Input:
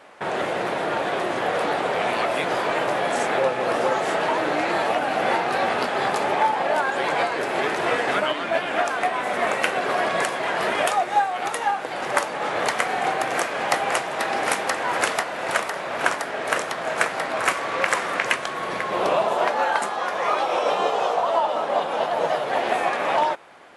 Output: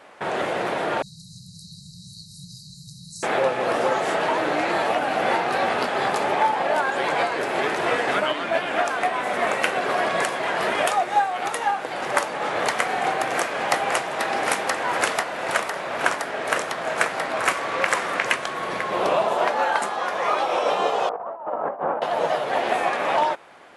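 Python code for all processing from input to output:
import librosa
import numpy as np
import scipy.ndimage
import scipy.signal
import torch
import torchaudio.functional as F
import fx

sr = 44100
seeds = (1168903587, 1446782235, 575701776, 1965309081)

y = fx.chain(x, sr, fx.brickwall_bandstop(low_hz=190.0, high_hz=3800.0),
    fx.high_shelf(hz=8800.0, db=-5.0), at=(1.02, 3.23))
y = fx.chain(y, sr, fx.lowpass(hz=1500.0, slope=24),
    fx.over_compress(threshold_db=-27.0, ratio=-0.5), at=(21.09, 22.02))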